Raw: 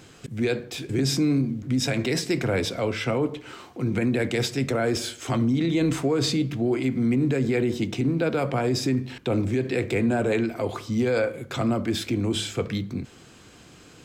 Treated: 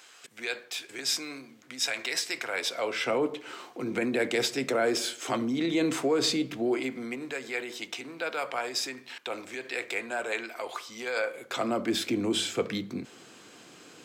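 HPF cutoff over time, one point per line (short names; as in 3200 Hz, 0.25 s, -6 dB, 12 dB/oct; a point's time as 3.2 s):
2.52 s 960 Hz
3.18 s 340 Hz
6.68 s 340 Hz
7.37 s 870 Hz
11.13 s 870 Hz
11.94 s 250 Hz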